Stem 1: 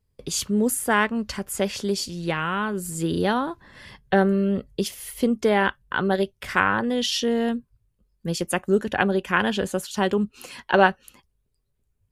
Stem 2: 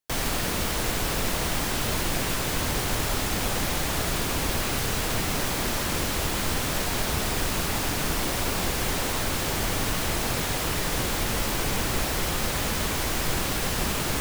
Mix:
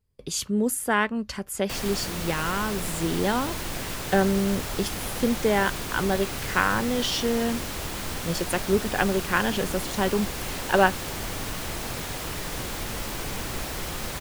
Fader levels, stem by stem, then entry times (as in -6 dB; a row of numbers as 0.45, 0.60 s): -2.5, -5.5 dB; 0.00, 1.60 s